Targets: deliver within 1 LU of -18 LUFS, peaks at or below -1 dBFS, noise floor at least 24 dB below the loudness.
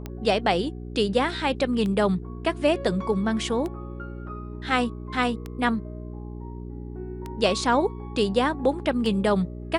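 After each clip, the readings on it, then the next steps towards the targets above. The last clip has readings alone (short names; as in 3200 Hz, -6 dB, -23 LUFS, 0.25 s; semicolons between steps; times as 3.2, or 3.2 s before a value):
clicks 6; hum 60 Hz; harmonics up to 420 Hz; hum level -33 dBFS; loudness -25.0 LUFS; peak -8.0 dBFS; loudness target -18.0 LUFS
-> de-click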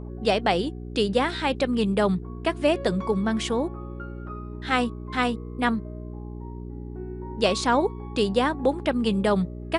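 clicks 0; hum 60 Hz; harmonics up to 420 Hz; hum level -33 dBFS
-> de-hum 60 Hz, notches 7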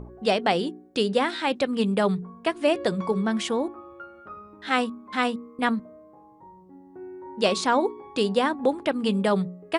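hum none; loudness -25.5 LUFS; peak -7.5 dBFS; loudness target -18.0 LUFS
-> gain +7.5 dB; limiter -1 dBFS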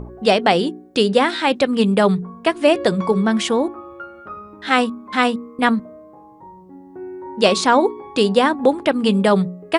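loudness -18.0 LUFS; peak -1.0 dBFS; noise floor -44 dBFS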